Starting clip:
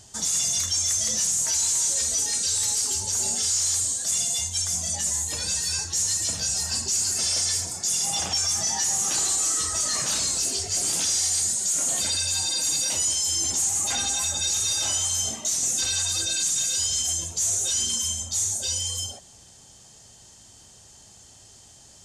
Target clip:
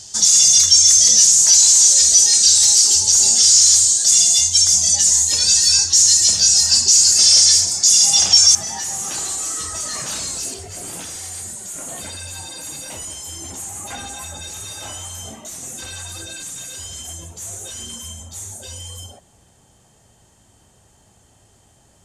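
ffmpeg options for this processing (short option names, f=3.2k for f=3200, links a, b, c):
-af "asetnsamples=n=441:p=0,asendcmd='8.55 equalizer g -4;10.54 equalizer g -14',equalizer=f=5.3k:t=o:w=1.5:g=13.5,volume=2dB"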